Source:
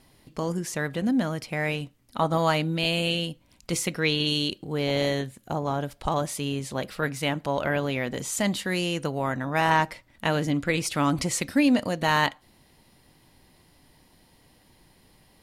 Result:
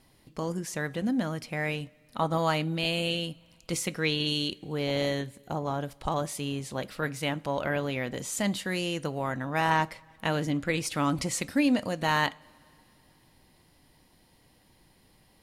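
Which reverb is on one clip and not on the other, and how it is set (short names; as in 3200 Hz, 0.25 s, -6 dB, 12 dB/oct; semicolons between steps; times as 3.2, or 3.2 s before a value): two-slope reverb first 0.26 s, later 2.8 s, from -19 dB, DRR 18 dB; gain -3.5 dB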